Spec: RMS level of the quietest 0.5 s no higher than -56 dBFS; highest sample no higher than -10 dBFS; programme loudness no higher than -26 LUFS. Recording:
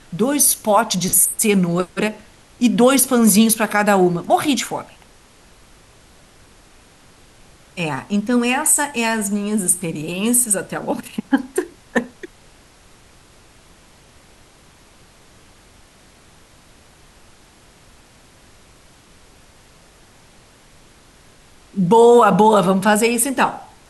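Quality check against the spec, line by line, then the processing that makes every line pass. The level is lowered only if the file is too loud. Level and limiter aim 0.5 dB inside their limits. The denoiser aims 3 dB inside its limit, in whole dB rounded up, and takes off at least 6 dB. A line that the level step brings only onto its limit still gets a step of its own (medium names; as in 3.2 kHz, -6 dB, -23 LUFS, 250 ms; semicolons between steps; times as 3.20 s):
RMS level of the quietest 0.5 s -49 dBFS: fail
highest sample -3.5 dBFS: fail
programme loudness -16.5 LUFS: fail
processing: trim -10 dB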